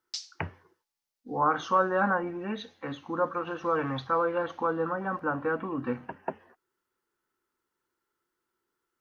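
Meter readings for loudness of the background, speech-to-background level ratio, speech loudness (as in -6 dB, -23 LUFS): -40.5 LUFS, 10.5 dB, -30.0 LUFS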